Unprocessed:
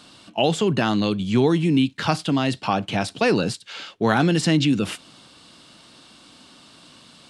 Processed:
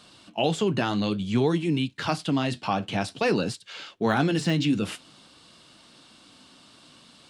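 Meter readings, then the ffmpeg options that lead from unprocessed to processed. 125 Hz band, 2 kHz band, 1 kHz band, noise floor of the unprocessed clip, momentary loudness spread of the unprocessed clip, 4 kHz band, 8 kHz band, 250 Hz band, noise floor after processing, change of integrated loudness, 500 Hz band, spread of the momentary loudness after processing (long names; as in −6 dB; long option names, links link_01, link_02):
−4.5 dB, −4.5 dB, −4.5 dB, −50 dBFS, 9 LU, −5.0 dB, −6.0 dB, −5.0 dB, −54 dBFS, −4.5 dB, −4.0 dB, 9 LU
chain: -af "deesser=0.55,flanger=delay=1.7:depth=9.7:regen=-64:speed=0.54:shape=sinusoidal"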